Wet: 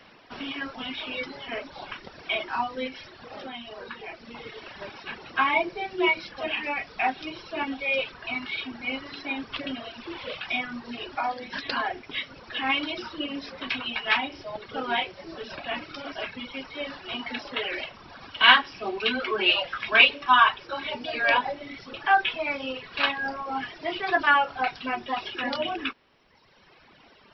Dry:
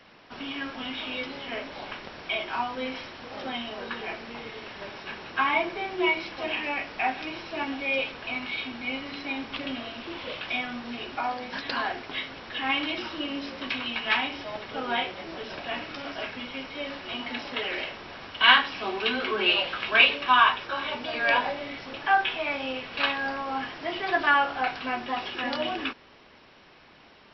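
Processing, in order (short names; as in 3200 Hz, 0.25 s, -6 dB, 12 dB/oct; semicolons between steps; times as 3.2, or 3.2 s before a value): reverb removal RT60 1.5 s; 2.87–4.4 compressor 2.5:1, threshold -40 dBFS, peak gain reduction 7 dB; gain +2 dB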